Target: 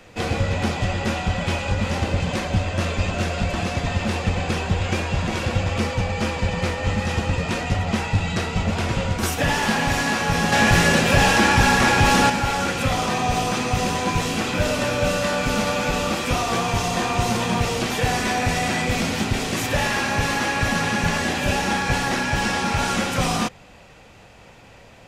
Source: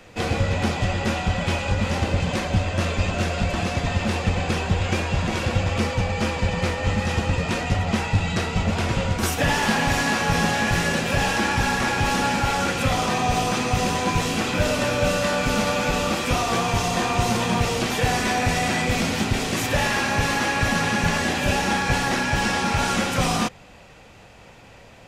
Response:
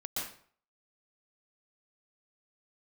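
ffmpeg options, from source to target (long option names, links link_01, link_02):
-filter_complex "[0:a]asettb=1/sr,asplit=3[link_01][link_02][link_03];[link_01]atrim=end=10.524[link_04];[link_02]atrim=start=10.52:end=12.3,asetpts=PTS-STARTPTS,afade=type=in:duration=0.004:curve=qsin,afade=type=out:start_time=1.776:duration=0.004:curve=qsin,acontrast=50[link_05];[link_03]atrim=start=12.296[link_06];[link_04][link_05]acrossfade=duration=0.004:curve1=hsin:curve2=qsin[link_07];[link_07][link_06]acrossfade=duration=0.004:curve1=qsin:curve2=hsin"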